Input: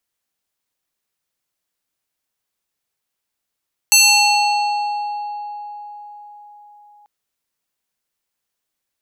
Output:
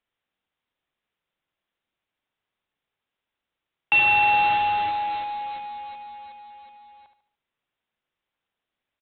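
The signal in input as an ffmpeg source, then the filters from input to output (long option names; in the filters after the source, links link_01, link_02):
-f lavfi -i "aevalsrc='0.447*pow(10,-3*t/4.78)*sin(2*PI*830*t+2.8*pow(10,-3*t/2.94)*sin(2*PI*4.26*830*t))':duration=3.14:sample_rate=44100"
-af "aresample=8000,acrusher=bits=3:mode=log:mix=0:aa=0.000001,aresample=44100,aecho=1:1:73|146|219|292:0.355|0.135|0.0512|0.0195"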